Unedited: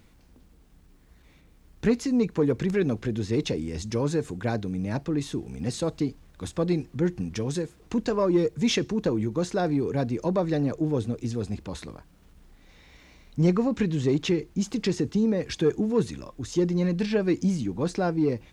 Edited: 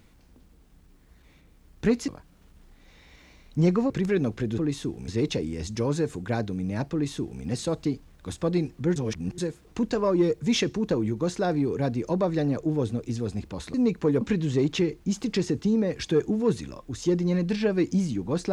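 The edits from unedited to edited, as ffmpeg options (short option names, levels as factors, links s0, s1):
-filter_complex "[0:a]asplit=9[s0][s1][s2][s3][s4][s5][s6][s7][s8];[s0]atrim=end=2.082[s9];[s1]atrim=start=11.888:end=13.712[s10];[s2]atrim=start=2.548:end=3.232[s11];[s3]atrim=start=5.068:end=5.572[s12];[s4]atrim=start=3.228:end=7.112[s13];[s5]atrim=start=7.108:end=7.532,asetpts=PTS-STARTPTS,areverse[s14];[s6]atrim=start=7.528:end=11.892[s15];[s7]atrim=start=2.078:end=2.552[s16];[s8]atrim=start=13.708[s17];[s9][s10]acrossfade=d=0.004:c1=hsin:c2=hsin[s18];[s18][s11]acrossfade=d=0.004:c1=hsin:c2=hsin[s19];[s19][s12]acrossfade=d=0.004:c1=hsin:c2=hsin[s20];[s20][s13]acrossfade=d=0.004:c1=hsin:c2=hsin[s21];[s21][s14]acrossfade=d=0.004:c1=hsin:c2=hsin[s22];[s22][s15]acrossfade=d=0.004:c1=hsin:c2=hsin[s23];[s23][s16]acrossfade=d=0.004:c1=hsin:c2=hsin[s24];[s24][s17]acrossfade=d=0.004:c1=hsin:c2=hsin"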